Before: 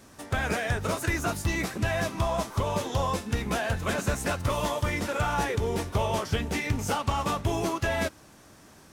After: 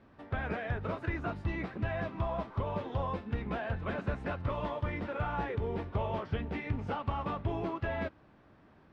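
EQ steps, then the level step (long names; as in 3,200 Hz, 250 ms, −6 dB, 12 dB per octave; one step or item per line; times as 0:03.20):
low-pass filter 7,500 Hz 12 dB per octave
high-frequency loss of the air 430 metres
−5.5 dB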